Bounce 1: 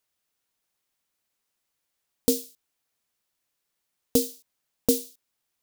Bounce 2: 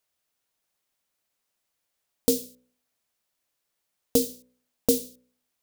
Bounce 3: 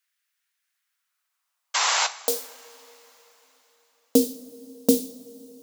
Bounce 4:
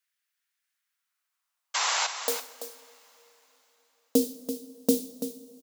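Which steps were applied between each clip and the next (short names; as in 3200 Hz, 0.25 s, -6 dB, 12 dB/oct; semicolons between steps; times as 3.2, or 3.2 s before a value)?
bell 610 Hz +3.5 dB 0.52 oct; de-hum 62.42 Hz, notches 9
painted sound noise, 1.74–2.07, 380–7700 Hz -24 dBFS; high-pass sweep 1700 Hz -> 220 Hz, 0.7–4.47; two-slope reverb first 0.42 s, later 4.2 s, from -18 dB, DRR 10 dB
echo 0.335 s -10.5 dB; gain -4.5 dB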